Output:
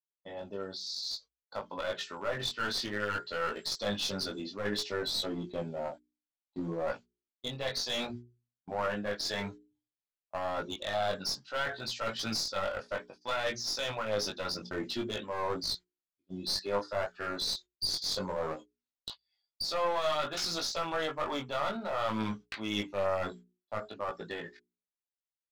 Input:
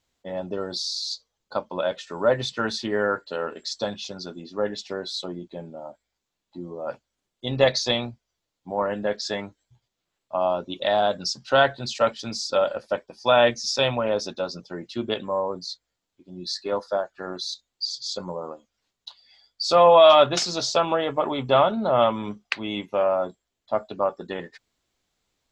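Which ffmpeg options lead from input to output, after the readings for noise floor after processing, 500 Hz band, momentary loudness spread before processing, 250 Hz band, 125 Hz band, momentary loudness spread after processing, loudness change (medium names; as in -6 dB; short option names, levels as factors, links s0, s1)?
under -85 dBFS, -13.0 dB, 15 LU, -7.5 dB, -8.0 dB, 10 LU, -10.5 dB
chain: -af "agate=range=0.0316:threshold=0.00708:ratio=16:detection=peak,lowpass=4600,aemphasis=mode=production:type=75kf,bandreject=f=60:t=h:w=6,bandreject=f=120:t=h:w=6,bandreject=f=180:t=h:w=6,bandreject=f=240:t=h:w=6,bandreject=f=300:t=h:w=6,bandreject=f=360:t=h:w=6,bandreject=f=420:t=h:w=6,adynamicequalizer=threshold=0.0141:dfrequency=1400:dqfactor=1.8:tfrequency=1400:tqfactor=1.8:attack=5:release=100:ratio=0.375:range=4:mode=boostabove:tftype=bell,areverse,acompressor=threshold=0.0398:ratio=8,areverse,alimiter=limit=0.075:level=0:latency=1:release=304,dynaudnorm=f=140:g=21:m=2.82,aeval=exprs='clip(val(0),-1,0.0596)':c=same,flanger=delay=18:depth=3.1:speed=0.58,volume=0.631"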